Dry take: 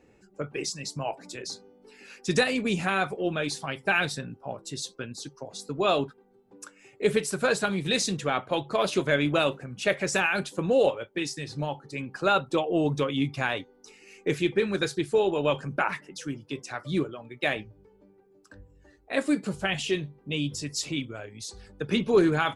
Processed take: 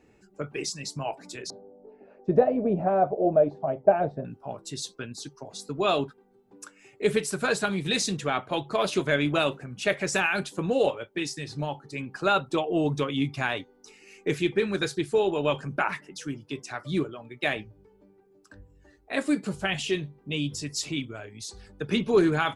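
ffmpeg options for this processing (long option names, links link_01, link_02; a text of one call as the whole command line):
ffmpeg -i in.wav -filter_complex "[0:a]asettb=1/sr,asplit=3[link_01][link_02][link_03];[link_01]atrim=end=1.504[link_04];[link_02]atrim=start=1.5:end=4.25,asetpts=PTS-STARTPTS,afade=type=in:duration=0.004:curve=qsin,afade=type=out:start_time=2.746:duration=0.004:curve=qsin,lowpass=frequency=630:width_type=q:width=6.6[link_05];[link_03]atrim=start=4.246[link_06];[link_04][link_05]acrossfade=duration=0.004:curve1=hsin:curve2=qsin[link_07];[link_07][link_06]acrossfade=duration=0.004:curve1=qsin:curve2=hsin,bandreject=frequency=520:width=12" out.wav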